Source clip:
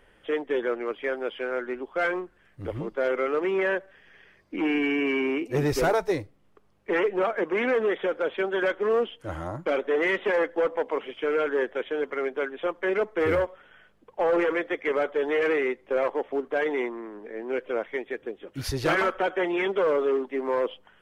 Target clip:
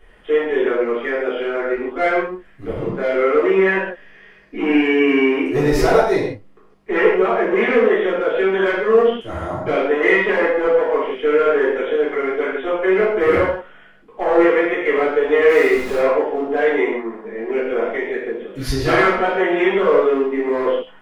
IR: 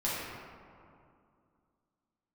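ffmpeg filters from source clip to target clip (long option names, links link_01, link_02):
-filter_complex "[0:a]asettb=1/sr,asplit=3[link_01][link_02][link_03];[link_01]atrim=end=15.494[link_04];[link_02]atrim=start=15.49:end=15.99,asetpts=PTS-STARTPTS,afade=type=in:duration=0.004:curve=qsin,afade=type=out:start_time=0.496:duration=0.004:curve=qsin,aeval=exprs='val(0)+0.5*0.0237*sgn(val(0))':channel_layout=same[link_05];[link_03]atrim=start=15.986[link_06];[link_04][link_05]acrossfade=duration=0.004:curve1=hsin:curve2=qsin[link_07];[link_07][link_06]acrossfade=duration=0.004:curve1=qsin:curve2=hsin[link_08];[1:a]atrim=start_sample=2205,afade=type=out:start_time=0.39:duration=0.01,atrim=end_sample=17640,asetrate=88200,aresample=44100[link_09];[link_08][link_09]afir=irnorm=-1:irlink=0,volume=6.5dB"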